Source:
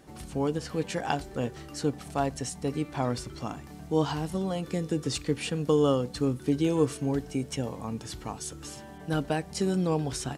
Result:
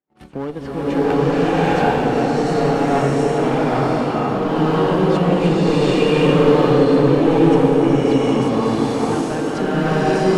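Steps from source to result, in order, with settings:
noise gate −41 dBFS, range −41 dB
transient designer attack +2 dB, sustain −3 dB
in parallel at +2 dB: downward compressor, threshold −33 dBFS, peak gain reduction 15 dB
on the sum: three-way crossover with the lows and the highs turned down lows −13 dB, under 160 Hz, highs −18 dB, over 3,300 Hz
asymmetric clip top −26.5 dBFS
tape delay 439 ms, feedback 83%, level −6 dB, low-pass 1,500 Hz
slow-attack reverb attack 800 ms, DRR −12 dB

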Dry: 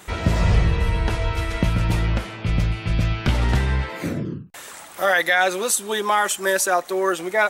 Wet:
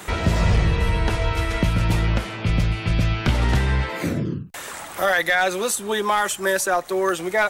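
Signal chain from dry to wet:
gain into a clipping stage and back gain 10 dB
multiband upward and downward compressor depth 40%

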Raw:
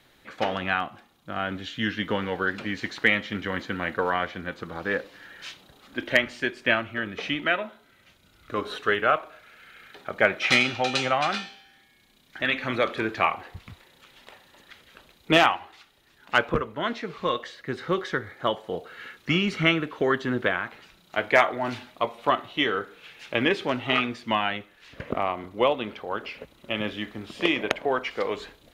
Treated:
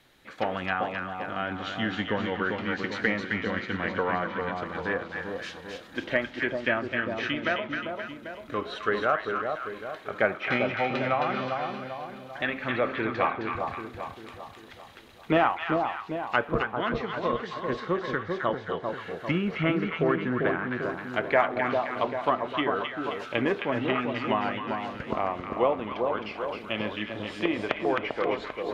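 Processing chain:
treble cut that deepens with the level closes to 1,500 Hz, closed at −21 dBFS
echo with a time of its own for lows and highs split 1,100 Hz, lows 395 ms, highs 264 ms, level −4 dB
level −2 dB

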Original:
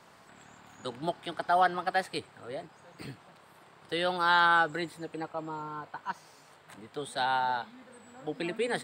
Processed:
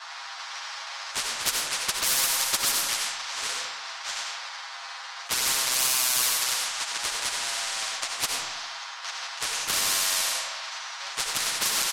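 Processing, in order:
each half-wave held at its own peak
low-pass that shuts in the quiet parts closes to 2,300 Hz, open at −19 dBFS
Butterworth high-pass 1,400 Hz 36 dB per octave
comb filter 5.5 ms, depth 82%
brickwall limiter −20 dBFS, peak gain reduction 10 dB
flanger swept by the level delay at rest 9.2 ms, full sweep at −24.5 dBFS
high shelf with overshoot 4,700 Hz +13 dB, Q 1.5
comb and all-pass reverb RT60 0.62 s, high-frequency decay 0.5×, pre-delay 25 ms, DRR 1 dB
wrong playback speed 45 rpm record played at 33 rpm
every bin compressed towards the loudest bin 4 to 1
level +4.5 dB

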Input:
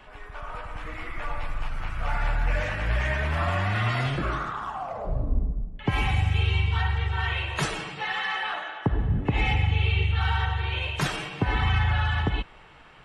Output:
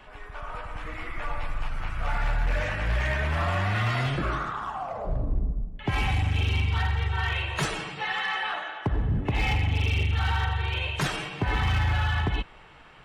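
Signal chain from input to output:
hard clipping −20 dBFS, distortion −16 dB

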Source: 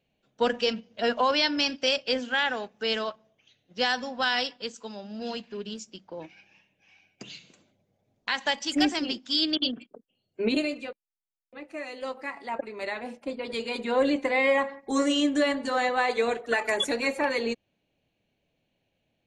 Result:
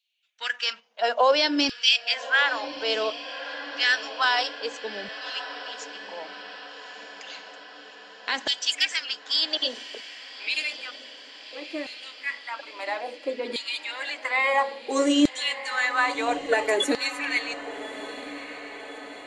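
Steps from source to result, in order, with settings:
auto-filter high-pass saw down 0.59 Hz 270–3,900 Hz
feedback delay with all-pass diffusion 1,216 ms, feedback 63%, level −13 dB
dynamic equaliser 8,300 Hz, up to +4 dB, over −40 dBFS, Q 0.71

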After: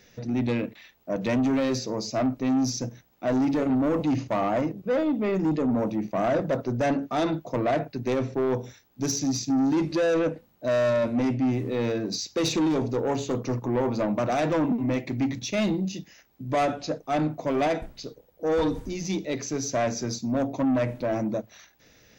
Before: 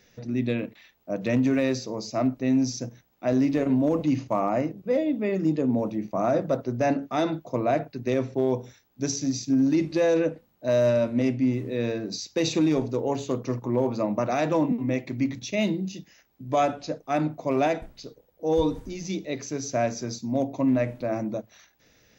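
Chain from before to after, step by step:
soft clipping −23 dBFS, distortion −11 dB
level +3.5 dB

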